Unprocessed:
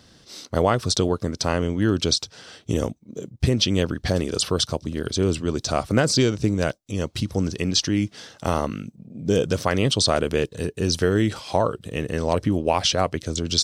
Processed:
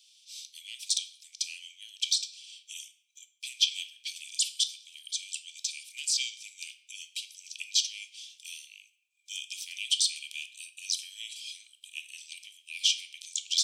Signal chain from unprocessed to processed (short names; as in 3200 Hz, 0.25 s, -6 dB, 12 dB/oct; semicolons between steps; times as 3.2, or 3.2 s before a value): shoebox room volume 170 m³, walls mixed, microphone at 0.34 m; soft clip -6.5 dBFS, distortion -24 dB; rippled Chebyshev high-pass 2300 Hz, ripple 6 dB